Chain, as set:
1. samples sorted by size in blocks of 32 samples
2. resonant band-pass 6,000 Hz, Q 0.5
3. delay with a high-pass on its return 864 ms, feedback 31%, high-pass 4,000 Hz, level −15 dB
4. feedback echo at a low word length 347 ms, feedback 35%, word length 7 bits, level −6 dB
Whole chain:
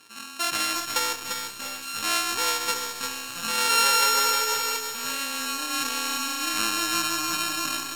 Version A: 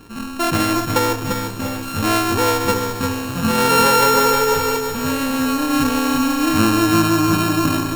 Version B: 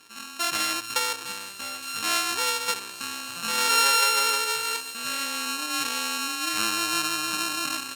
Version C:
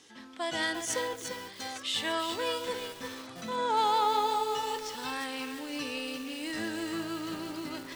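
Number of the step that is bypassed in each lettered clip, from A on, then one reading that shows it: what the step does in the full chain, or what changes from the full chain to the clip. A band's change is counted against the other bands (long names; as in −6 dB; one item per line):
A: 2, 125 Hz band +21.5 dB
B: 4, 2 kHz band +1.5 dB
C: 1, change in crest factor −7.5 dB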